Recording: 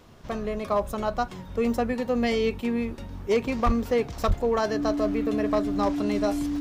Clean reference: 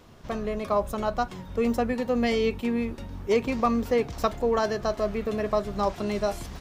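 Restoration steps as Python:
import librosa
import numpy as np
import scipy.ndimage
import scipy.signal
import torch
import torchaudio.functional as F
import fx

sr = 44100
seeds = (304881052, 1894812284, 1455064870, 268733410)

y = fx.fix_declip(x, sr, threshold_db=-16.0)
y = fx.notch(y, sr, hz=290.0, q=30.0)
y = fx.highpass(y, sr, hz=140.0, slope=24, at=(3.65, 3.77), fade=0.02)
y = fx.highpass(y, sr, hz=140.0, slope=24, at=(4.27, 4.39), fade=0.02)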